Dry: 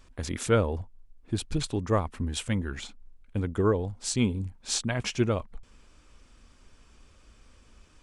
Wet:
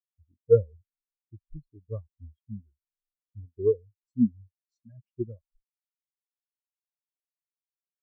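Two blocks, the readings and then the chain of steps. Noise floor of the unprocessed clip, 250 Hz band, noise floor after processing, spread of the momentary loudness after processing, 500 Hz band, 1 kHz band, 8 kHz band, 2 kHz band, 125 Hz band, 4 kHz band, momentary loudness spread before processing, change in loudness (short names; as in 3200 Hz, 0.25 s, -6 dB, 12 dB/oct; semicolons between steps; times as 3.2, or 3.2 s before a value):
-58 dBFS, -2.5 dB, under -85 dBFS, 21 LU, +2.0 dB, under -25 dB, under -40 dB, under -35 dB, -7.5 dB, under -40 dB, 11 LU, +1.5 dB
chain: spectral expander 4:1; gain +5 dB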